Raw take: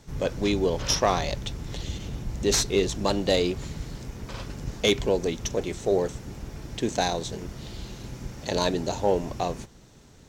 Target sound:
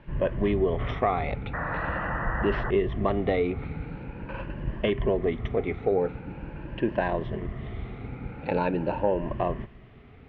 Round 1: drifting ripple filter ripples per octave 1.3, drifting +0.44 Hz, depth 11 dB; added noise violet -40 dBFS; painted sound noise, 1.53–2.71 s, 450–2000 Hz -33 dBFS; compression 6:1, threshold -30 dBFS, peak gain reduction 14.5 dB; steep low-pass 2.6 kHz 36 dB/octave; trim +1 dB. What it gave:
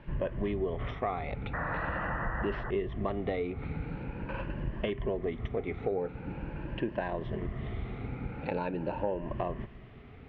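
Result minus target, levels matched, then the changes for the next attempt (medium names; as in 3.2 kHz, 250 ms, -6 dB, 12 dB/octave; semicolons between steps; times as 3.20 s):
compression: peak gain reduction +8 dB
change: compression 6:1, threshold -20.5 dBFS, peak gain reduction 6.5 dB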